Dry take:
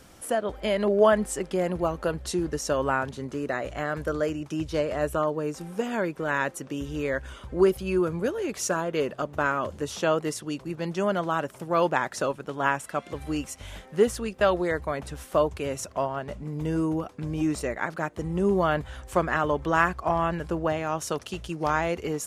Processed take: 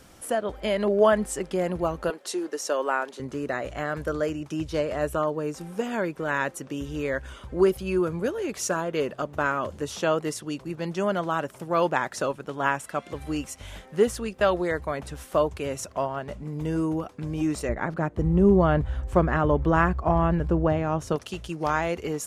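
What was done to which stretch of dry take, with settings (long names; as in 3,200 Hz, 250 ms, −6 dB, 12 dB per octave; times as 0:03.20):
0:02.10–0:03.20: high-pass filter 320 Hz 24 dB per octave
0:17.69–0:21.16: spectral tilt −3 dB per octave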